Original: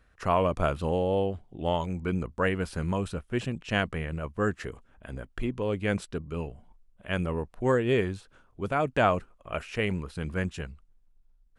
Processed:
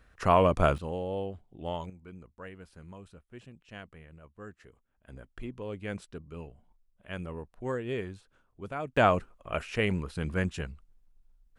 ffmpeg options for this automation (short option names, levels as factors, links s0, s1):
-af "asetnsamples=n=441:p=0,asendcmd='0.78 volume volume -7.5dB;1.9 volume volume -18.5dB;5.08 volume volume -9dB;8.97 volume volume 0.5dB',volume=1.33"